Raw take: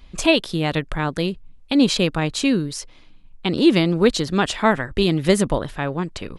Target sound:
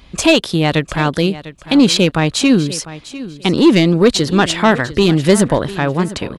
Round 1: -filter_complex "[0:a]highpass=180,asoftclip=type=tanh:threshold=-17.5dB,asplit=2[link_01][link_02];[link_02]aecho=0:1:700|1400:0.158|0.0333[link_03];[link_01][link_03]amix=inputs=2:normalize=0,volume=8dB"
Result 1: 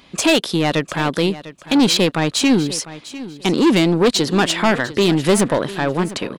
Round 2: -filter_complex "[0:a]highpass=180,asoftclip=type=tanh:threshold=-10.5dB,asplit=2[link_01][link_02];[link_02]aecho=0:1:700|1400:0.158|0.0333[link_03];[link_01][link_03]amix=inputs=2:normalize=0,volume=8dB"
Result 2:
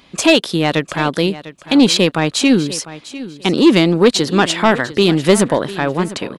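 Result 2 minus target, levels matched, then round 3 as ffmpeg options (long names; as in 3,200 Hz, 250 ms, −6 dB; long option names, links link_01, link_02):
125 Hz band −3.0 dB
-filter_complex "[0:a]highpass=55,asoftclip=type=tanh:threshold=-10.5dB,asplit=2[link_01][link_02];[link_02]aecho=0:1:700|1400:0.158|0.0333[link_03];[link_01][link_03]amix=inputs=2:normalize=0,volume=8dB"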